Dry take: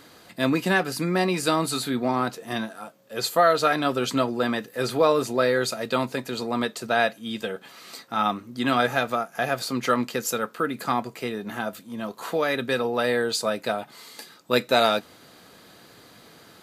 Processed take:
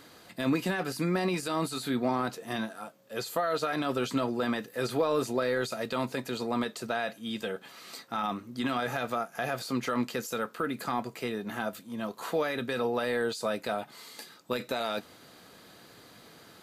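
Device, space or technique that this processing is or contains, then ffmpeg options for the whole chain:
de-esser from a sidechain: -filter_complex "[0:a]asplit=2[link_01][link_02];[link_02]highpass=frequency=4200:poles=1,apad=whole_len=733035[link_03];[link_01][link_03]sidechaincompress=threshold=-36dB:ratio=12:attack=4.7:release=24,volume=-3dB"

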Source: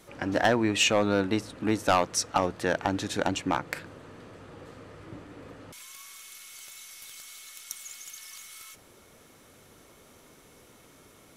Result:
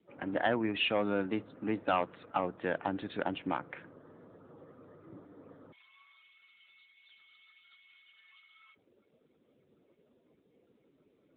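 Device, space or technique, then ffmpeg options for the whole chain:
mobile call with aggressive noise cancelling: -filter_complex "[0:a]asettb=1/sr,asplit=3[link_01][link_02][link_03];[link_01]atrim=end=4.274[link_04];[link_02]atrim=start=4.27:end=6.02,asetpts=PTS-STARTPTS,afade=type=in:duration=0.004:curve=qsin,afade=type=out:start_time=1.746:duration=0.004:curve=qsin,highshelf=frequency=11000:gain=-6.5[link_05];[link_03]atrim=start=6.016[link_06];[link_04][link_05]acrossfade=duration=0.004:curve1=hsin:curve2=qsin[link_07];[link_07][link_06]acrossfade=duration=0.004:curve1=qsin:curve2=hsin,highpass=120,afftdn=noise_reduction=34:noise_floor=-50,volume=-6dB" -ar 8000 -c:a libopencore_amrnb -b:a 10200

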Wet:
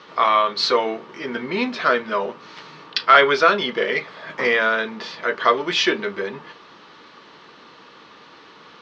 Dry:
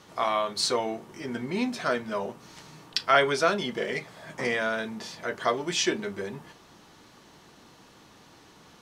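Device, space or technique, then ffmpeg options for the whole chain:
overdrive pedal into a guitar cabinet: -filter_complex "[0:a]asplit=2[link_01][link_02];[link_02]highpass=frequency=720:poles=1,volume=9dB,asoftclip=type=tanh:threshold=-6.5dB[link_03];[link_01][link_03]amix=inputs=2:normalize=0,lowpass=frequency=5700:poles=1,volume=-6dB,highpass=91,equalizer=frequency=110:width_type=q:width=4:gain=-8,equalizer=frequency=460:width_type=q:width=4:gain=4,equalizer=frequency=730:width_type=q:width=4:gain=-6,equalizer=frequency=1200:width_type=q:width=4:gain=4,lowpass=frequency=4600:width=0.5412,lowpass=frequency=4600:width=1.3066,volume=5.5dB"

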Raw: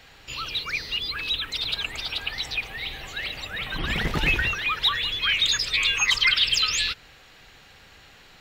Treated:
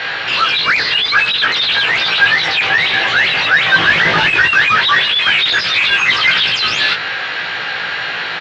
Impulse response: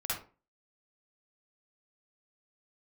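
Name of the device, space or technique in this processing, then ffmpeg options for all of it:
overdrive pedal into a guitar cabinet: -filter_complex "[0:a]asplit=2[link_01][link_02];[link_02]highpass=frequency=720:poles=1,volume=37dB,asoftclip=type=tanh:threshold=-7.5dB[link_03];[link_01][link_03]amix=inputs=2:normalize=0,lowpass=frequency=4300:poles=1,volume=-6dB,highpass=87,equalizer=frequency=140:width_type=q:width=4:gain=6,equalizer=frequency=250:width_type=q:width=4:gain=-4,equalizer=frequency=1600:width_type=q:width=4:gain=7,lowpass=frequency=4600:width=0.5412,lowpass=frequency=4600:width=1.3066,asplit=2[link_04][link_05];[link_05]adelay=18,volume=-2dB[link_06];[link_04][link_06]amix=inputs=2:normalize=0,volume=-1dB"

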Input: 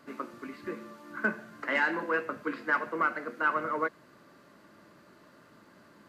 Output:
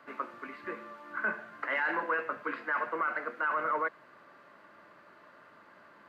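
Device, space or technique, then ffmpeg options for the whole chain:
DJ mixer with the lows and highs turned down: -filter_complex "[0:a]acrossover=split=540 3000:gain=0.224 1 0.158[link_01][link_02][link_03];[link_01][link_02][link_03]amix=inputs=3:normalize=0,alimiter=level_in=2.5dB:limit=-24dB:level=0:latency=1:release=15,volume=-2.5dB,volume=4.5dB"

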